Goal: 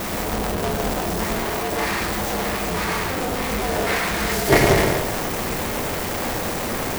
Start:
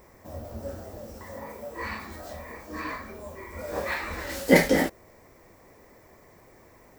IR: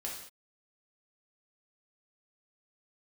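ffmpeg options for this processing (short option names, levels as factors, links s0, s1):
-filter_complex "[0:a]aeval=exprs='val(0)+0.5*0.0841*sgn(val(0))':c=same,asplit=2[s0][s1];[s1]lowshelf=f=490:g=8[s2];[1:a]atrim=start_sample=2205,adelay=105[s3];[s2][s3]afir=irnorm=-1:irlink=0,volume=0.473[s4];[s0][s4]amix=inputs=2:normalize=0,aeval=exprs='val(0)*sgn(sin(2*PI*130*n/s))':c=same"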